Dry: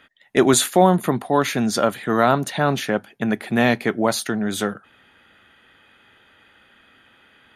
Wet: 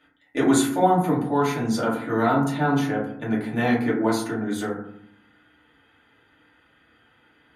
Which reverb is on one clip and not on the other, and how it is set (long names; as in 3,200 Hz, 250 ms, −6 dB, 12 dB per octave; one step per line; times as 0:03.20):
feedback delay network reverb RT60 0.66 s, low-frequency decay 1.6×, high-frequency decay 0.35×, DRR −6.5 dB
level −12.5 dB